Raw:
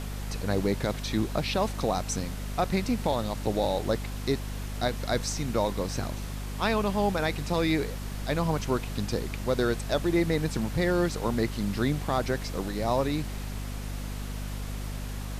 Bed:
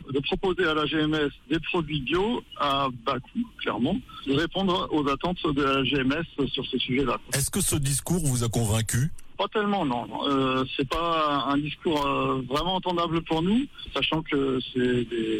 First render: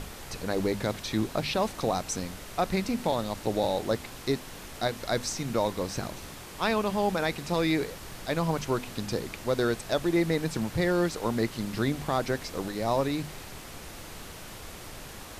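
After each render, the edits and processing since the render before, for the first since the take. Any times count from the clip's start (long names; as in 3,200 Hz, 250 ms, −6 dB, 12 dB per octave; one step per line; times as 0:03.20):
mains-hum notches 50/100/150/200/250 Hz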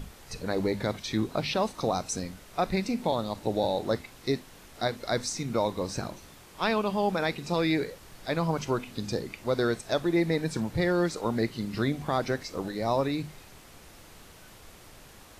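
noise reduction from a noise print 8 dB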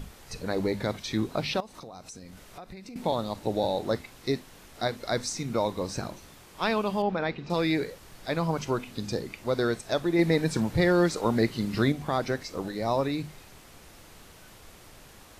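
0:01.60–0:02.96: downward compressor, threshold −41 dBFS
0:07.02–0:07.50: high-frequency loss of the air 220 metres
0:10.19–0:11.92: clip gain +3.5 dB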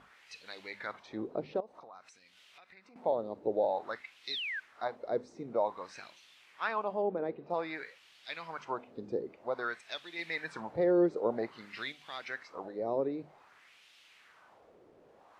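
LFO wah 0.52 Hz 410–3,100 Hz, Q 2.2
0:04.30–0:04.60: sound drawn into the spectrogram fall 1,500–4,300 Hz −37 dBFS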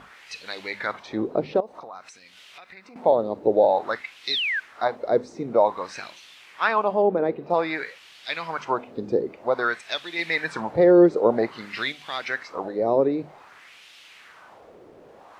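level +12 dB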